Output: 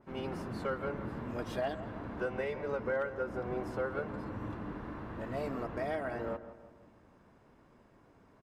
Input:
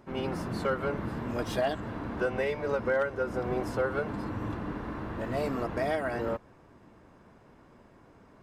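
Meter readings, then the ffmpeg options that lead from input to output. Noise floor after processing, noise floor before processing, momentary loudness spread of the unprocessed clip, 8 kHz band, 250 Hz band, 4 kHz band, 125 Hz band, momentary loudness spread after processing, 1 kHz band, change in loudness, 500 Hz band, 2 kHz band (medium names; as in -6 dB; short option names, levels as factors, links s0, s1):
-63 dBFS, -57 dBFS, 7 LU, no reading, -5.5 dB, -8.0 dB, -6.0 dB, 7 LU, -6.0 dB, -6.0 dB, -5.5 dB, -6.0 dB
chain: -filter_complex "[0:a]asplit=2[s0][s1];[s1]adelay=165,lowpass=f=2100:p=1,volume=0.237,asplit=2[s2][s3];[s3]adelay=165,lowpass=f=2100:p=1,volume=0.48,asplit=2[s4][s5];[s5]adelay=165,lowpass=f=2100:p=1,volume=0.48,asplit=2[s6][s7];[s7]adelay=165,lowpass=f=2100:p=1,volume=0.48,asplit=2[s8][s9];[s9]adelay=165,lowpass=f=2100:p=1,volume=0.48[s10];[s0][s2][s4][s6][s8][s10]amix=inputs=6:normalize=0,adynamicequalizer=threshold=0.00355:dfrequency=3200:dqfactor=0.7:tfrequency=3200:tqfactor=0.7:attack=5:release=100:ratio=0.375:range=3:mode=cutabove:tftype=highshelf,volume=0.501"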